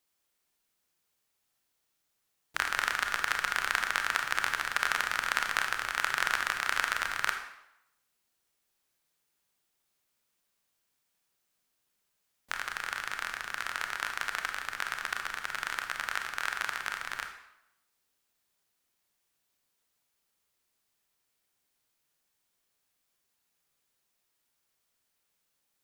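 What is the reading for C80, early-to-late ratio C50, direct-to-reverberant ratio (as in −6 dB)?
10.0 dB, 7.5 dB, 5.0 dB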